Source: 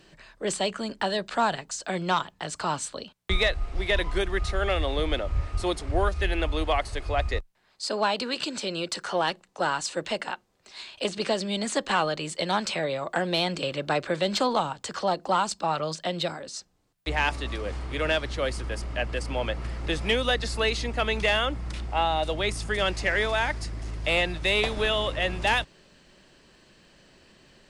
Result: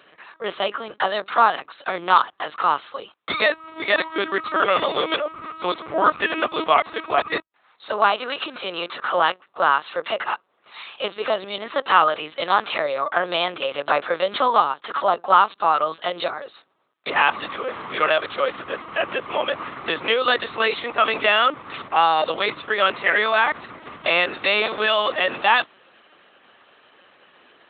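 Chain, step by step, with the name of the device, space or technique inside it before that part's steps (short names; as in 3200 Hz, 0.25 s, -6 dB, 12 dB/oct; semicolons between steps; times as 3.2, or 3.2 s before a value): talking toy (LPC vocoder at 8 kHz pitch kept; HPF 390 Hz 12 dB/oct; bell 1200 Hz +9.5 dB 0.48 oct); gain +5.5 dB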